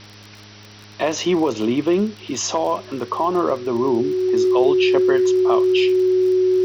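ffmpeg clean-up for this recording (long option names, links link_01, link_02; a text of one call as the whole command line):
ffmpeg -i in.wav -af "adeclick=threshold=4,bandreject=frequency=103.9:width_type=h:width=4,bandreject=frequency=207.8:width_type=h:width=4,bandreject=frequency=311.7:width_type=h:width=4,bandreject=frequency=415.6:width_type=h:width=4,bandreject=frequency=370:width=30,afwtdn=0.01" out.wav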